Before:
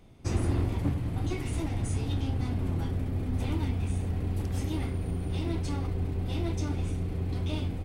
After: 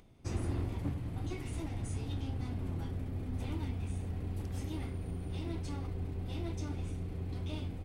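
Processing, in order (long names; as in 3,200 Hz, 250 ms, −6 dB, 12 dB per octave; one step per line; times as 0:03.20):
upward compression, threshold −50 dBFS
level −7.5 dB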